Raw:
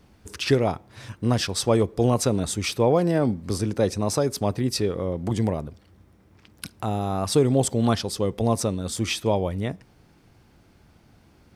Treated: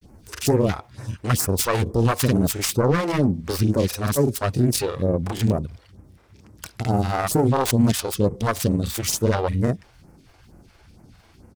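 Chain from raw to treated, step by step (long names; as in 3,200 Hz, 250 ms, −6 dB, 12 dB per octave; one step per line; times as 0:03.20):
phase distortion by the signal itself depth 0.43 ms
all-pass phaser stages 2, 2.2 Hz, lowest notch 150–3,500 Hz
brickwall limiter −16 dBFS, peak gain reduction 7.5 dB
granular cloud, spray 33 ms, pitch spread up and down by 0 semitones
level +7.5 dB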